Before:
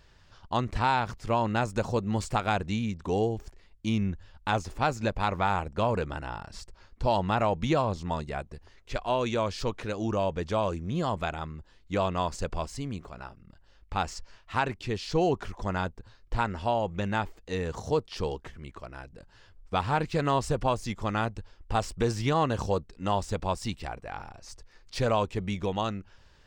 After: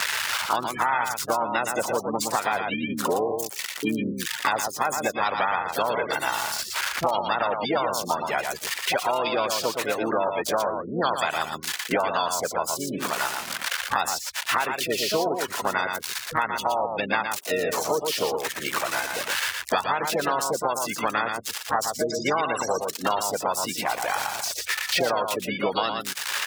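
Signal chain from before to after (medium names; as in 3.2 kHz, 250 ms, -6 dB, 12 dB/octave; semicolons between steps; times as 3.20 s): zero-crossing glitches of -25 dBFS; spectral gate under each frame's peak -20 dB strong; harmony voices -5 st -16 dB, +5 st -9 dB; bass shelf 190 Hz -6 dB; peak limiter -19 dBFS, peak gain reduction 7 dB; frequency weighting A; on a send: delay 116 ms -6.5 dB; on the sum: three bands compressed up and down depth 100%; trim +6 dB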